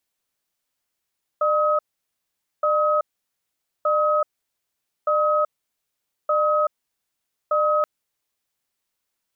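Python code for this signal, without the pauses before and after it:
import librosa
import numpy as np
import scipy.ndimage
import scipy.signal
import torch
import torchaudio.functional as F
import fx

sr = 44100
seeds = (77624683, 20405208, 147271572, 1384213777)

y = fx.cadence(sr, length_s=6.43, low_hz=603.0, high_hz=1270.0, on_s=0.38, off_s=0.84, level_db=-19.5)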